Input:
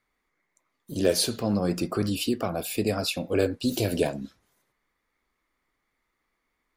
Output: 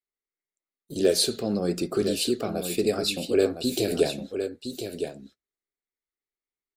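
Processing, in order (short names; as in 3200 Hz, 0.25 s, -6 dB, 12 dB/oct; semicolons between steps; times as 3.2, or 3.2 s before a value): gate -42 dBFS, range -22 dB; thirty-one-band EQ 100 Hz -9 dB, 400 Hz +9 dB, 1000 Hz -9 dB, 4000 Hz +7 dB, 8000 Hz +7 dB; echo 1.012 s -8 dB; gain -2 dB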